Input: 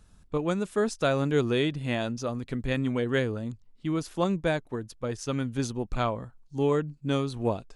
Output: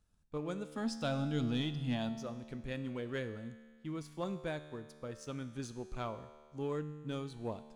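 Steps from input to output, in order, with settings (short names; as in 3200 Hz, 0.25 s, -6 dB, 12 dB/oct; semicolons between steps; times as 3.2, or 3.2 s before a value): 0.72–2.09 thirty-one-band EQ 125 Hz +10 dB, 250 Hz +12 dB, 400 Hz -10 dB, 800 Hz +8 dB, 3150 Hz +7 dB, 5000 Hz +11 dB; sample leveller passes 1; resonator 75 Hz, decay 1.7 s, harmonics all, mix 70%; gain -6.5 dB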